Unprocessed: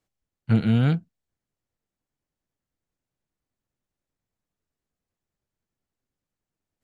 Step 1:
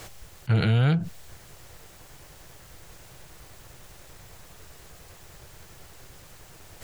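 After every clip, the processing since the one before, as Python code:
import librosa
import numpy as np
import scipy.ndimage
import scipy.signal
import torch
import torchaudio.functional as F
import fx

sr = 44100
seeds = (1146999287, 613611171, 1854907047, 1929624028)

y = fx.peak_eq(x, sr, hz=240.0, db=-14.5, octaves=0.62)
y = fx.env_flatten(y, sr, amount_pct=70)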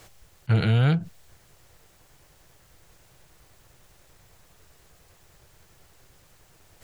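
y = fx.upward_expand(x, sr, threshold_db=-38.0, expansion=1.5)
y = y * librosa.db_to_amplitude(1.5)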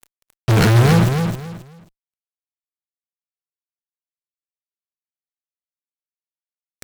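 y = fx.fuzz(x, sr, gain_db=48.0, gate_db=-42.0)
y = fx.echo_feedback(y, sr, ms=268, feedback_pct=25, wet_db=-6)
y = y * librosa.db_to_amplitude(1.5)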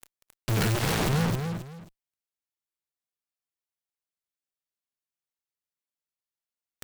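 y = 10.0 ** (-20.5 / 20.0) * (np.abs((x / 10.0 ** (-20.5 / 20.0) + 3.0) % 4.0 - 2.0) - 1.0)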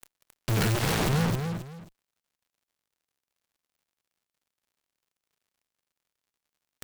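y = fx.dmg_crackle(x, sr, seeds[0], per_s=100.0, level_db=-62.0)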